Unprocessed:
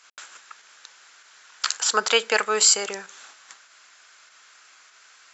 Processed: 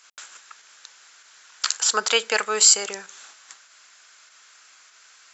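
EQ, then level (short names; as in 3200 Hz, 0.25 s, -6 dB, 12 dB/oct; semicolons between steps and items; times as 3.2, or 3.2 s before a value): high shelf 4500 Hz +6.5 dB; -2.0 dB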